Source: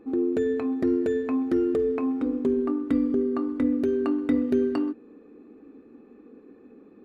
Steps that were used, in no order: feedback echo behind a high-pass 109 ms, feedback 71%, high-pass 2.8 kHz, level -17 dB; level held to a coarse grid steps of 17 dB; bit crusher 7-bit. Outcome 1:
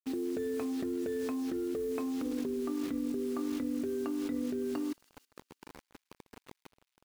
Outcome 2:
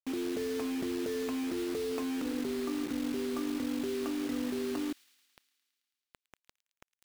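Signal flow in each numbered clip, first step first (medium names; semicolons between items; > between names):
bit crusher > feedback echo behind a high-pass > level held to a coarse grid; level held to a coarse grid > bit crusher > feedback echo behind a high-pass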